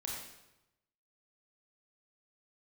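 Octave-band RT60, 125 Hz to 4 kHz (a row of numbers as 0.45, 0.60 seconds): 1.2, 0.95, 0.95, 0.95, 0.85, 0.80 seconds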